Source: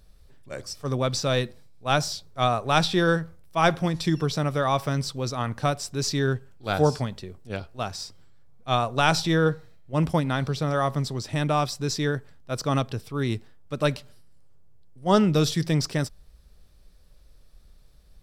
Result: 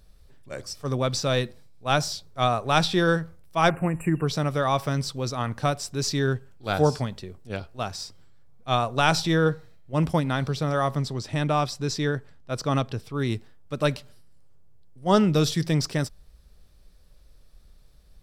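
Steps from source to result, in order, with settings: 3.7–4.27 spectral delete 2900–7300 Hz; 10.97–13.2 high shelf 9800 Hz -8 dB

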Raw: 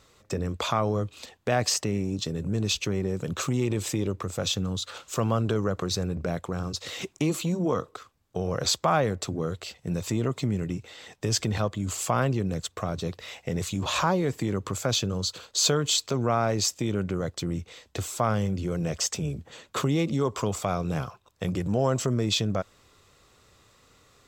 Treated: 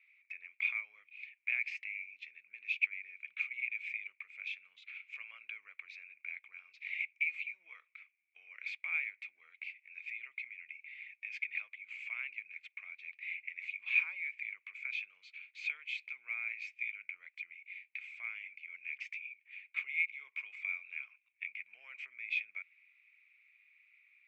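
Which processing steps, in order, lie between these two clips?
Butterworth band-pass 2300 Hz, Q 7.8; short-mantissa float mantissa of 6-bit; gain +10.5 dB

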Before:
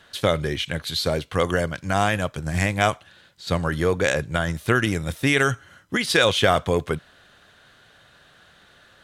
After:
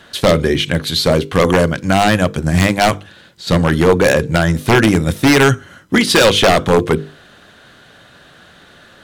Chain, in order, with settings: bell 260 Hz +7 dB 1.8 oct; notches 50/100/150/200/250/300/350/400/450/500 Hz; wavefolder -12 dBFS; gain +8.5 dB

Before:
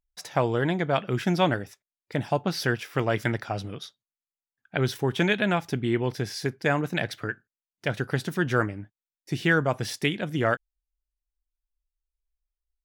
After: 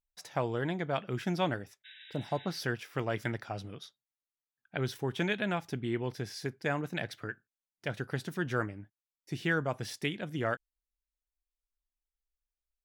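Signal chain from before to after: spectral repair 1.87–2.51, 1500–3900 Hz after; gain -8 dB

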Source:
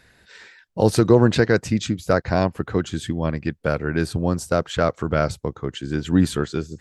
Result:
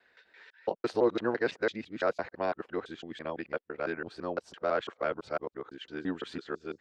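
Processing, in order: local time reversal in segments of 0.168 s; LPF 6800 Hz 12 dB/oct; three-band isolator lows -23 dB, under 300 Hz, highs -17 dB, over 4000 Hz; gain -8.5 dB

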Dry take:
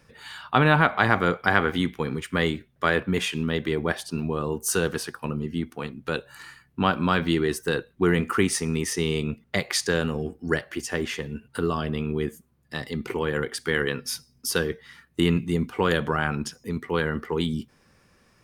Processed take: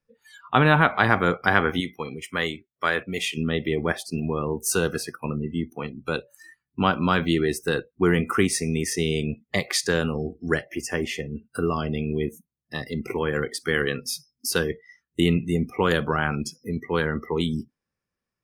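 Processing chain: 1.8–3.37 low shelf 450 Hz -10 dB; spectral noise reduction 27 dB; gain +1 dB

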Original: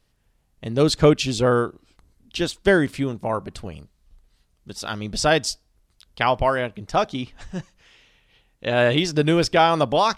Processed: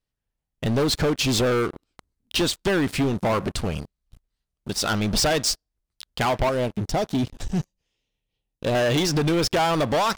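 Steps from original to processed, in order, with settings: compressor 10:1, threshold -21 dBFS, peak gain reduction 12.5 dB; 6.49–8.75 bell 1600 Hz -14 dB 1.8 oct; sample leveller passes 5; gain -8 dB

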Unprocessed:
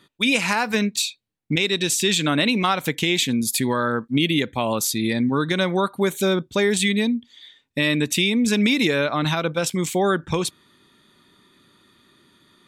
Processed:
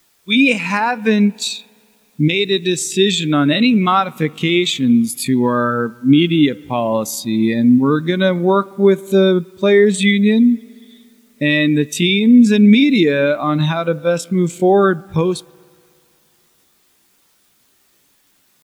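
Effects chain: spring tank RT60 2.3 s, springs 41 ms, chirp 60 ms, DRR 15 dB; tempo 0.68×; in parallel at -4 dB: requantised 6-bit, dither triangular; on the sum: spectral expander 1.5:1

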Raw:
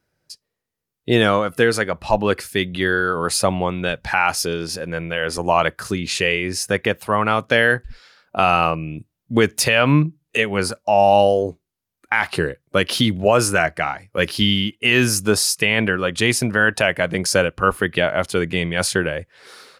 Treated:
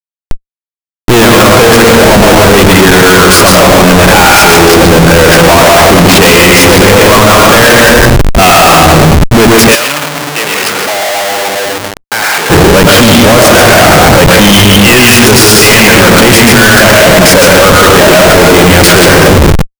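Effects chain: reverb RT60 1.4 s, pre-delay 0.104 s, DRR -0.5 dB; Schmitt trigger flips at -25 dBFS; sample leveller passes 3; 9.75–12.5 HPF 880 Hz 6 dB/oct; maximiser +13.5 dB; gain -1 dB

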